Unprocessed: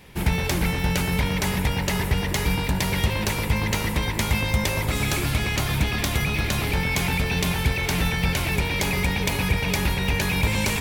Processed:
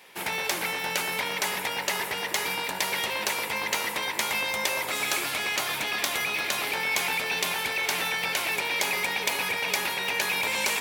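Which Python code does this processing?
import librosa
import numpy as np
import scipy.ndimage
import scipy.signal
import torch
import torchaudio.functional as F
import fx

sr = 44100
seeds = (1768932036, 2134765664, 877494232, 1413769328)

y = scipy.signal.sosfilt(scipy.signal.butter(2, 550.0, 'highpass', fs=sr, output='sos'), x)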